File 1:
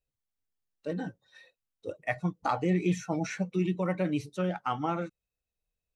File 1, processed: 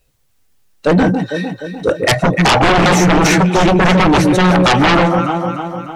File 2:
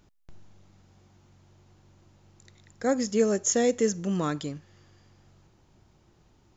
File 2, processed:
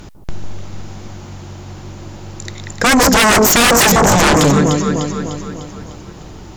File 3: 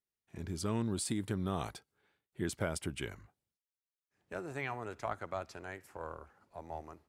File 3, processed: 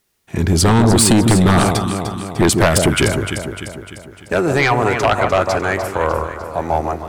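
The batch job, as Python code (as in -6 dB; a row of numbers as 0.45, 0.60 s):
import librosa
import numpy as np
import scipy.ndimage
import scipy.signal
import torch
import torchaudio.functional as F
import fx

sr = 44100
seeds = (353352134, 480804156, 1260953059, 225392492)

y = fx.echo_alternate(x, sr, ms=150, hz=1100.0, feedback_pct=71, wet_db=-7.0)
y = fx.fold_sine(y, sr, drive_db=18, ceiling_db=-11.5)
y = y * 10.0 ** (4.5 / 20.0)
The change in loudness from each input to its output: +19.5, +15.5, +23.5 LU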